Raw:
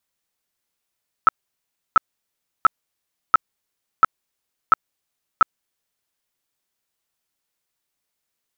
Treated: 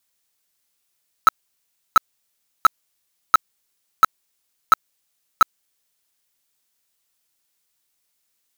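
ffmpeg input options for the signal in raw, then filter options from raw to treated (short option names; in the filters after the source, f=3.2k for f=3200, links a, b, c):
-f lavfi -i "aevalsrc='0.447*sin(2*PI*1310*mod(t,0.69))*lt(mod(t,0.69),22/1310)':d=4.83:s=44100"
-af "highshelf=f=2.7k:g=8.5,acrusher=bits=3:mode=log:mix=0:aa=0.000001"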